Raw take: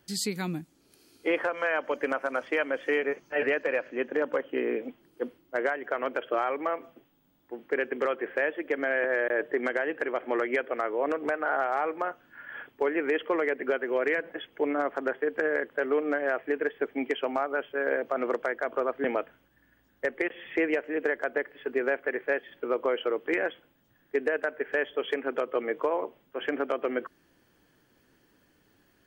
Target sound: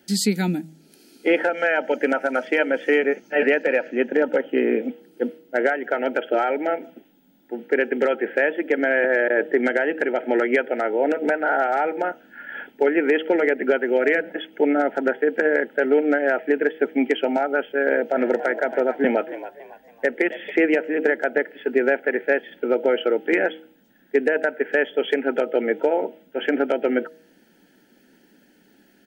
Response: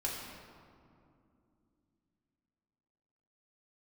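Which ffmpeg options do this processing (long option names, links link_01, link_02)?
-filter_complex "[0:a]asuperstop=centerf=1100:order=20:qfactor=3.3,lowshelf=frequency=150:width_type=q:width=3:gain=-10,bandreject=frequency=158.9:width_type=h:width=4,bandreject=frequency=317.8:width_type=h:width=4,bandreject=frequency=476.7:width_type=h:width=4,bandreject=frequency=635.6:width_type=h:width=4,bandreject=frequency=794.5:width_type=h:width=4,asplit=3[link_01][link_02][link_03];[link_01]afade=type=out:start_time=18.13:duration=0.02[link_04];[link_02]asplit=4[link_05][link_06][link_07][link_08];[link_06]adelay=278,afreqshift=77,volume=-14dB[link_09];[link_07]adelay=556,afreqshift=154,volume=-23.1dB[link_10];[link_08]adelay=834,afreqshift=231,volume=-32.2dB[link_11];[link_05][link_09][link_10][link_11]amix=inputs=4:normalize=0,afade=type=in:start_time=18.13:duration=0.02,afade=type=out:start_time=20.5:duration=0.02[link_12];[link_03]afade=type=in:start_time=20.5:duration=0.02[link_13];[link_04][link_12][link_13]amix=inputs=3:normalize=0,volume=7dB"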